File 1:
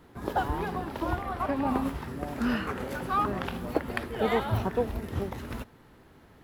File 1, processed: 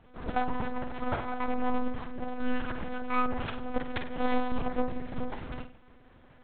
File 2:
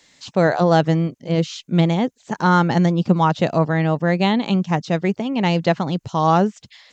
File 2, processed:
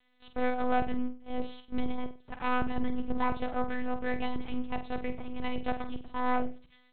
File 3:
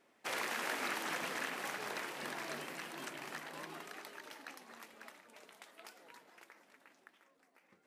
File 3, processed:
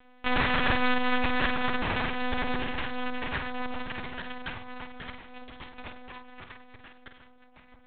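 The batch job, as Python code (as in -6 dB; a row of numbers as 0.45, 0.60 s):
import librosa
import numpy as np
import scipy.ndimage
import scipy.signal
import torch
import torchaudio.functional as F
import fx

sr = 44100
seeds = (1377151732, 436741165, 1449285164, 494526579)

y = np.maximum(x, 0.0)
y = fx.lpc_monotone(y, sr, seeds[0], pitch_hz=250.0, order=8)
y = fx.room_flutter(y, sr, wall_m=8.2, rt60_s=0.34)
y = y * 10.0 ** (-30 / 20.0) / np.sqrt(np.mean(np.square(y)))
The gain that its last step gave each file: +1.5, -11.0, +16.5 dB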